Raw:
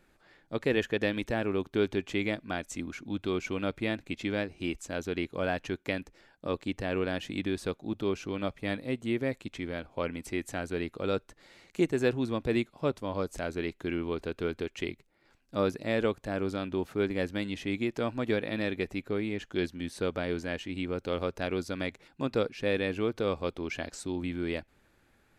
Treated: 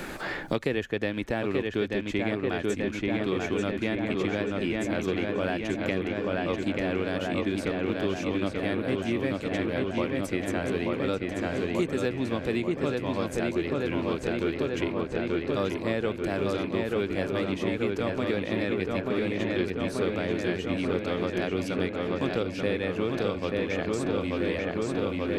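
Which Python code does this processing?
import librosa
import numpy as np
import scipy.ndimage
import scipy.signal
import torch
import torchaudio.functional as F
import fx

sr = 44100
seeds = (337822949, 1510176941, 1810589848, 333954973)

y = fx.rattle_buzz(x, sr, strikes_db=-35.0, level_db=-38.0)
y = fx.echo_filtered(y, sr, ms=885, feedback_pct=75, hz=4200.0, wet_db=-3)
y = fx.band_squash(y, sr, depth_pct=100)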